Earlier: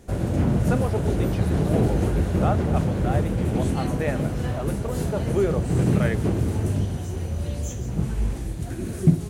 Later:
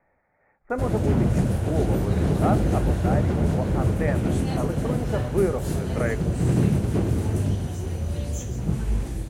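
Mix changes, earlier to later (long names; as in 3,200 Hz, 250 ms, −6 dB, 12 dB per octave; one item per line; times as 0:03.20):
speech: add Butterworth low-pass 2,400 Hz 96 dB per octave
background: entry +0.70 s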